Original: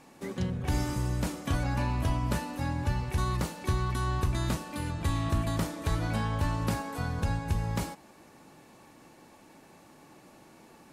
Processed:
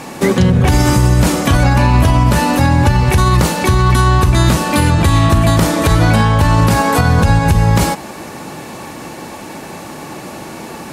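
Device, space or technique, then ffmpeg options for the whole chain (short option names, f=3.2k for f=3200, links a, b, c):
mastering chain: -af "highpass=41,equalizer=f=280:t=o:w=0.21:g=-3,acompressor=threshold=-32dB:ratio=2.5,alimiter=level_in=27dB:limit=-1dB:release=50:level=0:latency=1,volume=-1dB"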